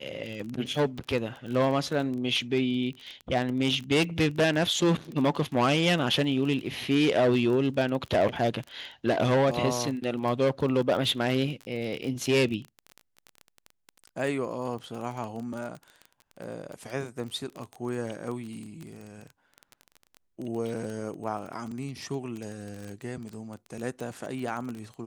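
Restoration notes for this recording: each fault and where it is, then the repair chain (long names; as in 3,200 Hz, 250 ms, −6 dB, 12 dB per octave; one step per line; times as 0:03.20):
surface crackle 22 per second −32 dBFS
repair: click removal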